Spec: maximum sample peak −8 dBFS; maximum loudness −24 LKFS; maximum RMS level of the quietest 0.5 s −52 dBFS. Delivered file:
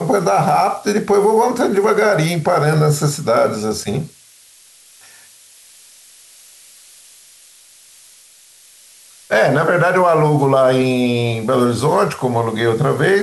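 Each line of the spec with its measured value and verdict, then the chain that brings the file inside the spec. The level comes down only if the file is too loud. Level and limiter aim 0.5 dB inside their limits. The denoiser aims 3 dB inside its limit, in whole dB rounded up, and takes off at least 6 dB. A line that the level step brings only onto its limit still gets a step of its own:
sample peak −5.0 dBFS: out of spec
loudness −15.5 LKFS: out of spec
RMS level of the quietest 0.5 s −47 dBFS: out of spec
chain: level −9 dB

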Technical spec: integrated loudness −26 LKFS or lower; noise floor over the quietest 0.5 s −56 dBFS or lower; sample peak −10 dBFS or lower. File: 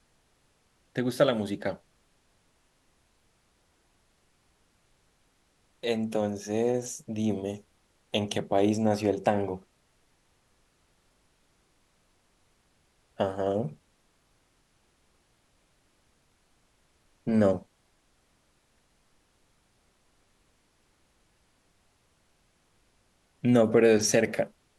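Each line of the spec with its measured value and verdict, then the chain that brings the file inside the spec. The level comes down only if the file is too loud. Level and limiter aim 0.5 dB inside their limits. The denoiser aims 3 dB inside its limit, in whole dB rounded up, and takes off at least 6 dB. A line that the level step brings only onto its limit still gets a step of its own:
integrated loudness −27.5 LKFS: in spec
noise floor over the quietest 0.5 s −68 dBFS: in spec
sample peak −9.0 dBFS: out of spec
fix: brickwall limiter −10.5 dBFS

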